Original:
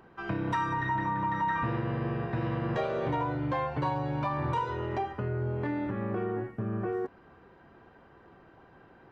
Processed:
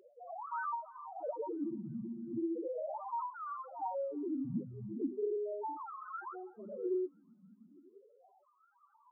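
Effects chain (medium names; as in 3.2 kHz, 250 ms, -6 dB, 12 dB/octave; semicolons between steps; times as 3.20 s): self-modulated delay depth 0.2 ms; in parallel at -8 dB: word length cut 8-bit, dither none; 1.78–2.28 s: on the sum: tone controls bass -12 dB, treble -2 dB; 3.56–4.08 s: high-pass 150 Hz 24 dB/octave; decimation with a swept rate 35×, swing 100% 1.2 Hz; wah-wah 0.37 Hz 210–1300 Hz, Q 3; loudest bins only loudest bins 2; 5.01–5.77 s: tilt shelf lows +5.5 dB, about 1.2 kHz; hum notches 50/100/150/200/250 Hz; compression 1.5:1, threshold -51 dBFS, peak gain reduction 7 dB; on a send: feedback echo behind a high-pass 327 ms, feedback 48%, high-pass 2.6 kHz, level -16 dB; on the sum: trim +8 dB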